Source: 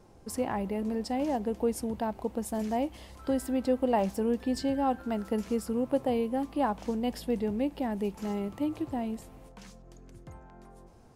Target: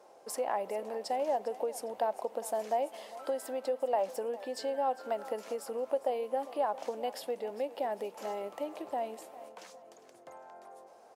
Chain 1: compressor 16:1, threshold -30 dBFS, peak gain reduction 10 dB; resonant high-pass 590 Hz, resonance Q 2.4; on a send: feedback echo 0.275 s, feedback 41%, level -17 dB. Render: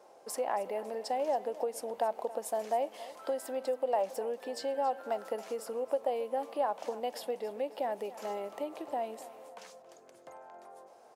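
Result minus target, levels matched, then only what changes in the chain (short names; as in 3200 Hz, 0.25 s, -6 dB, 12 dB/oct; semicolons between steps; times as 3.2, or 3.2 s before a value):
echo 0.129 s early
change: feedback echo 0.404 s, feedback 41%, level -17 dB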